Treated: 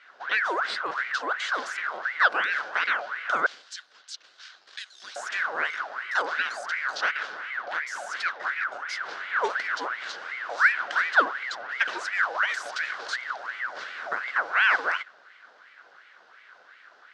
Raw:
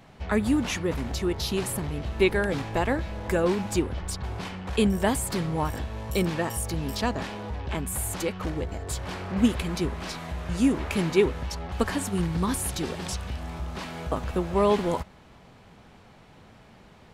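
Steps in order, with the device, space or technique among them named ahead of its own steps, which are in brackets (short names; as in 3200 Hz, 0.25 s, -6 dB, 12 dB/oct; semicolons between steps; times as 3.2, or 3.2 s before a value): 3.46–5.16 inverse Chebyshev high-pass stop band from 670 Hz, stop band 60 dB; resonant high shelf 4400 Hz +8 dB, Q 1.5; voice changer toy (ring modulator with a swept carrier 1400 Hz, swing 55%, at 2.8 Hz; speaker cabinet 500–4700 Hz, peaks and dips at 890 Hz -5 dB, 1500 Hz +10 dB, 2400 Hz -4 dB)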